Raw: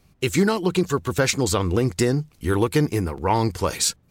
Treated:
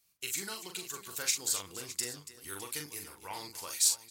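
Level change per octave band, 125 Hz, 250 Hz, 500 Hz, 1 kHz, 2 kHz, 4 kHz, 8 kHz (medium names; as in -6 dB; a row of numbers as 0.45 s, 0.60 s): -31.5 dB, -28.5 dB, -26.0 dB, -20.0 dB, -14.0 dB, -7.0 dB, -3.0 dB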